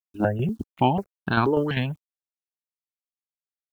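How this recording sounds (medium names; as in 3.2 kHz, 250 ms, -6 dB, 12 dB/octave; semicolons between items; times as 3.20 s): a quantiser's noise floor 10-bit, dither none; tremolo saw down 5.1 Hz, depth 55%; notches that jump at a steady rate 4.1 Hz 480–2000 Hz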